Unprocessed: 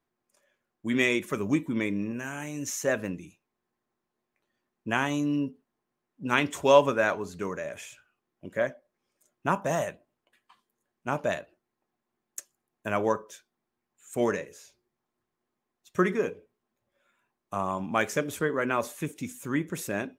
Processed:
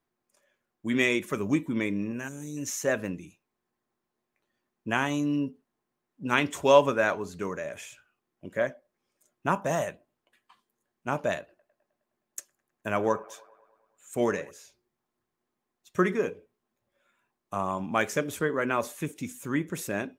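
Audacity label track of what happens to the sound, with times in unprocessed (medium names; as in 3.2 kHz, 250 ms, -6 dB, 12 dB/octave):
2.280000	2.570000	time-frequency box 580–3400 Hz -18 dB
11.380000	14.510000	feedback echo behind a band-pass 104 ms, feedback 63%, band-pass 1 kHz, level -20 dB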